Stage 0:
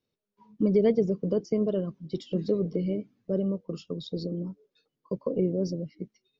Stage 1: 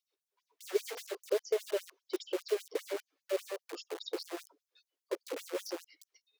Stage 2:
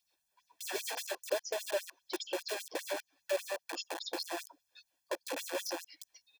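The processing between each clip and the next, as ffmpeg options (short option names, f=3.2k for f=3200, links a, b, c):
-filter_complex "[0:a]asplit=2[a][b];[b]aeval=exprs='(mod(29.9*val(0)+1,2)-1)/29.9':c=same,volume=-9dB[c];[a][c]amix=inputs=2:normalize=0,afftfilt=real='re*gte(b*sr/1024,280*pow(5900/280,0.5+0.5*sin(2*PI*5*pts/sr)))':imag='im*gte(b*sr/1024,280*pow(5900/280,0.5+0.5*sin(2*PI*5*pts/sr)))':win_size=1024:overlap=0.75,volume=-1dB"
-filter_complex "[0:a]aecho=1:1:1.2:0.86,asplit=2[a][b];[b]acompressor=threshold=-47dB:ratio=6,volume=2dB[c];[a][c]amix=inputs=2:normalize=0"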